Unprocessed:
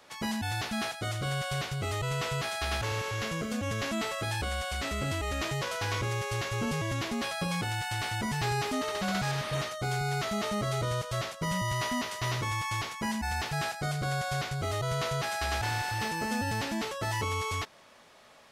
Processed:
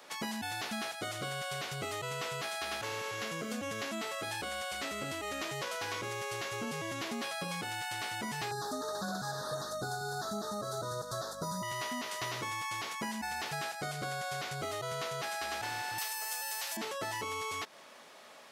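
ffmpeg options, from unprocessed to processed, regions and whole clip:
-filter_complex "[0:a]asettb=1/sr,asplit=3[s0][s1][s2];[s0]atrim=end=8.514[s3];[s1]atrim=start=8.51:end=11.63,asetpts=PTS-STARTPTS,afade=t=in:d=0.004:c=qsin,afade=t=out:st=3.116:d=0.004:c=qsin,aeval=exprs='val(0)+0.00631*(sin(2*PI*50*n/s)+sin(2*PI*2*50*n/s)/2+sin(2*PI*3*50*n/s)/3+sin(2*PI*4*50*n/s)/4+sin(2*PI*5*50*n/s)/5)':c=same,asuperstop=centerf=2500:order=12:qfactor=1.3,aphaser=in_gain=1:out_gain=1:delay=2.3:decay=0.31:speed=1.6:type=triangular[s4];[s2]atrim=start=11.626[s5];[s3][s4]acrossfade=d=0.004:c1=hsin:c2=qsin[s6];[s6][s5]acrossfade=d=0.004:c1=qsin:c2=hsin,asettb=1/sr,asplit=3[s7][s8][s9];[s7]atrim=end=15.984[s10];[s8]atrim=start=15.98:end=16.77,asetpts=PTS-STARTPTS,afade=t=in:d=0.004:c=qsin,afade=t=out:st=0.786:d=0.004:c=qsin,highpass=f=620:w=0.5412,highpass=f=620:w=1.3066,aemphasis=mode=production:type=75fm[s11];[s9]atrim=start=16.766[s12];[s10][s11]acrossfade=d=0.004:c1=hsin:c2=qsin[s13];[s13][s12]acrossfade=d=0.004:c1=qsin:c2=hsin,highpass=220,highshelf=f=11000:g=4,acompressor=threshold=0.0141:ratio=6,volume=1.33"

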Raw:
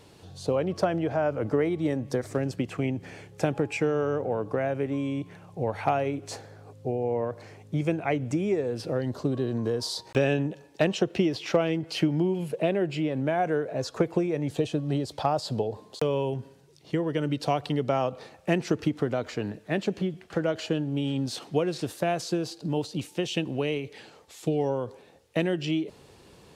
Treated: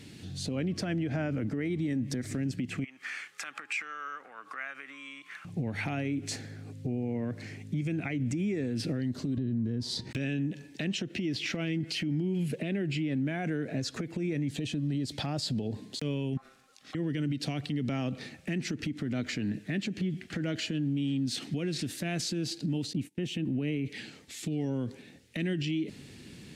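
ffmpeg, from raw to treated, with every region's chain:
-filter_complex "[0:a]asettb=1/sr,asplit=3[s0][s1][s2];[s0]atrim=end=2.844[s3];[s1]atrim=start=2.84:end=5.45,asetpts=PTS-STARTPTS,afade=t=in:d=0.004:c=qsin,afade=t=out:st=2.606:d=0.004:c=qsin,acompressor=threshold=0.02:ratio=4:attack=3.2:release=140:knee=1:detection=peak,highpass=f=1200:t=q:w=6[s4];[s2]atrim=start=5.446[s5];[s3][s4]acrossfade=d=0.004:c1=hsin:c2=qsin[s6];[s6][s5]acrossfade=d=0.004:c1=qsin:c2=hsin,asettb=1/sr,asplit=3[s7][s8][s9];[s7]atrim=end=9.374[s10];[s8]atrim=start=9.37:end=10.11,asetpts=PTS-STARTPTS,afade=t=in:d=0.004:c=qsin,afade=t=out:st=0.736:d=0.004:c=qsin,lowpass=f=3500:p=1,lowshelf=f=300:g=11.5[s11];[s9]atrim=start=10.106[s12];[s10][s11]acrossfade=d=0.004:c1=hsin:c2=qsin[s13];[s13][s12]acrossfade=d=0.004:c1=qsin:c2=hsin,asettb=1/sr,asplit=3[s14][s15][s16];[s14]atrim=end=16.374[s17];[s15]atrim=start=16.37:end=16.95,asetpts=PTS-STARTPTS,afade=t=in:d=0.004:c=qsin,afade=t=out:st=0.576:d=0.004:c=qsin,bandreject=f=1000:w=5.5,acompressor=threshold=0.0112:ratio=3:attack=3.2:release=140:knee=1:detection=peak,aeval=exprs='val(0)*sin(2*PI*930*n/s)':c=same[s18];[s16]atrim=start=16.946[s19];[s17][s18]acrossfade=d=0.004:c1=hsin:c2=qsin[s20];[s20][s19]acrossfade=d=0.004:c1=qsin:c2=hsin,asettb=1/sr,asplit=3[s21][s22][s23];[s21]atrim=end=22.934[s24];[s22]atrim=start=22.93:end=23.86,asetpts=PTS-STARTPTS,afade=t=in:d=0.004:c=qsin,afade=t=out:st=0.926:d=0.004:c=qsin,agate=range=0.0708:threshold=0.00562:ratio=16:release=100:detection=peak,equalizer=f=5000:w=0.47:g=-12[s25];[s23]atrim=start=23.856[s26];[s24][s25]acrossfade=d=0.004:c1=hsin:c2=qsin[s27];[s27][s26]acrossfade=d=0.004:c1=qsin:c2=hsin,equalizer=f=125:t=o:w=1:g=5,equalizer=f=250:t=o:w=1:g=12,equalizer=f=500:t=o:w=1:g=-7,equalizer=f=1000:t=o:w=1:g=-11,equalizer=f=2000:t=o:w=1:g=9,equalizer=f=4000:t=o:w=1:g=3,equalizer=f=8000:t=o:w=1:g=4,acompressor=threshold=0.0794:ratio=6,alimiter=limit=0.0631:level=0:latency=1:release=93"

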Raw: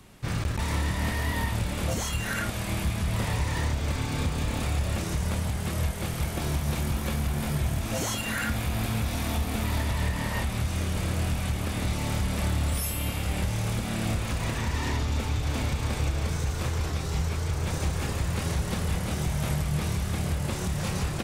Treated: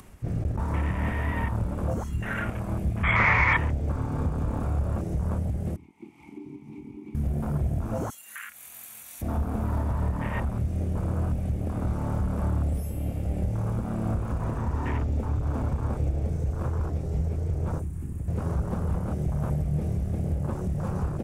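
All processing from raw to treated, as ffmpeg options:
-filter_complex "[0:a]asettb=1/sr,asplit=3[s0][s1][s2];[s0]atrim=end=3.034[s3];[s1]atrim=start=3.03:end=3.57,asetpts=PTS-STARTPTS,afade=t=in:d=0.004:c=qsin,afade=t=out:st=0.536:d=0.004:c=qsin,lowpass=f=2200:t=q:w=13,equalizer=f=1200:w=1.4:g=13[s4];[s2]atrim=start=3.566[s5];[s3][s4]acrossfade=d=0.004:c1=hsin:c2=qsin[s6];[s6][s5]acrossfade=d=0.004:c1=qsin:c2=hsin,asettb=1/sr,asplit=3[s7][s8][s9];[s7]atrim=end=5.764[s10];[s8]atrim=start=5.76:end=7.15,asetpts=PTS-STARTPTS,afade=t=in:d=0.004:c=qsin,afade=t=out:st=1.386:d=0.004:c=qsin,asplit=3[s11][s12][s13];[s11]bandpass=f=300:t=q:w=8,volume=1[s14];[s12]bandpass=f=870:t=q:w=8,volume=0.501[s15];[s13]bandpass=f=2240:t=q:w=8,volume=0.355[s16];[s14][s15][s16]amix=inputs=3:normalize=0,highshelf=f=2100:g=11[s17];[s9]atrim=start=7.146[s18];[s10][s17]acrossfade=d=0.004:c1=hsin:c2=qsin[s19];[s19][s18]acrossfade=d=0.004:c1=qsin:c2=hsin,asettb=1/sr,asplit=3[s20][s21][s22];[s20]atrim=end=8.104[s23];[s21]atrim=start=8.1:end=9.22,asetpts=PTS-STARTPTS,afade=t=in:d=0.004:c=qsin,afade=t=out:st=1.116:d=0.004:c=qsin,aderivative,bandreject=f=5100:w=6.8,acontrast=48[s24];[s22]atrim=start=9.216[s25];[s23][s24]acrossfade=d=0.004:c1=hsin:c2=qsin[s26];[s26][s25]acrossfade=d=0.004:c1=qsin:c2=hsin,asettb=1/sr,asplit=3[s27][s28][s29];[s27]atrim=end=17.794[s30];[s28]atrim=start=17.79:end=18.28,asetpts=PTS-STARTPTS,afade=t=in:d=0.004:c=qsin,afade=t=out:st=0.486:d=0.004:c=qsin,highshelf=f=6900:t=q:w=1.5:g=10.5,acrossover=split=340|5600[s31][s32][s33];[s31]acompressor=threshold=0.0282:ratio=4[s34];[s32]acompressor=threshold=0.00631:ratio=4[s35];[s33]acompressor=threshold=0.00501:ratio=4[s36];[s34][s35][s36]amix=inputs=3:normalize=0[s37];[s29]atrim=start=18.276[s38];[s30][s37]acrossfade=d=0.004:c1=hsin:c2=qsin[s39];[s39][s38]acrossfade=d=0.004:c1=qsin:c2=hsin,afwtdn=0.0224,equalizer=f=3900:t=o:w=0.96:g=-8.5,acompressor=mode=upward:threshold=0.0158:ratio=2.5,volume=1.12"

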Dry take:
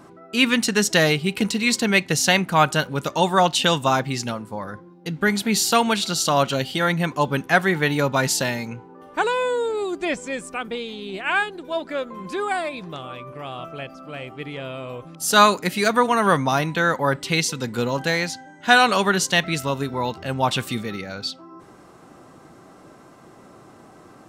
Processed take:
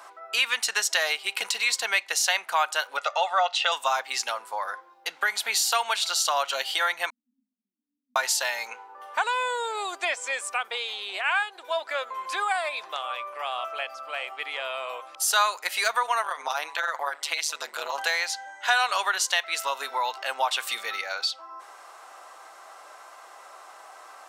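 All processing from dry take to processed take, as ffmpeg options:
-filter_complex "[0:a]asettb=1/sr,asplit=3[s0][s1][s2];[s0]atrim=end=2.974[s3];[s1]atrim=start=2.97:end=3.72,asetpts=PTS-STARTPTS,afade=t=in:d=0.004:c=qsin,afade=t=out:st=0.746:d=0.004:c=qsin,highpass=130,lowpass=4100,equalizer=f=200:t=o:w=0.21:g=-7,aecho=1:1:1.5:0.72,atrim=end_sample=33075[s4];[s2]atrim=start=3.716[s5];[s3][s4]acrossfade=d=0.004:c1=hsin:c2=qsin[s6];[s6][s5]acrossfade=d=0.004:c1=qsin:c2=hsin,asettb=1/sr,asplit=3[s7][s8][s9];[s7]atrim=end=7.104[s10];[s8]atrim=start=7.1:end=8.16,asetpts=PTS-STARTPTS,afade=t=in:d=0.004:c=qsin,afade=t=out:st=1.056:d=0.004:c=qsin,acompressor=threshold=0.0708:ratio=6:attack=3.2:release=140:knee=1:detection=peak,asuperpass=centerf=230:order=8:qfactor=5.2[s11];[s9]atrim=start=8.156[s12];[s10][s11]acrossfade=d=0.004:c1=hsin:c2=qsin[s13];[s13][s12]acrossfade=d=0.004:c1=qsin:c2=hsin,asettb=1/sr,asplit=3[s14][s15][s16];[s14]atrim=end=16.224[s17];[s15]atrim=start=16.22:end=17.98,asetpts=PTS-STARTPTS,afade=t=in:d=0.004:c=qsin,afade=t=out:st=1.756:d=0.004:c=qsin,acompressor=threshold=0.0891:ratio=2.5:attack=3.2:release=140:knee=1:detection=peak,tremolo=f=150:d=0.919[s18];[s16]atrim=start=17.976[s19];[s17][s18]acrossfade=d=0.004:c1=hsin:c2=qsin[s20];[s20][s19]acrossfade=d=0.004:c1=qsin:c2=hsin,highpass=f=700:w=0.5412,highpass=f=700:w=1.3066,acompressor=threshold=0.0282:ratio=2.5,volume=1.88"

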